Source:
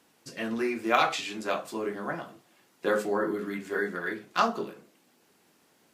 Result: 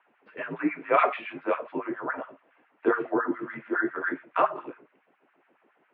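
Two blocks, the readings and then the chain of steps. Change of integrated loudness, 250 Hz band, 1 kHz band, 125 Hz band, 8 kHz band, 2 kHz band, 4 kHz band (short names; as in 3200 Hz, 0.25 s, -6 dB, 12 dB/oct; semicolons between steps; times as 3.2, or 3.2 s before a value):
+1.5 dB, +2.0 dB, +1.5 dB, -4.0 dB, under -35 dB, +1.0 dB, under -10 dB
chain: LFO high-pass sine 7.2 Hz 370–1700 Hz; mistuned SSB -65 Hz 190–2800 Hz; air absorption 180 m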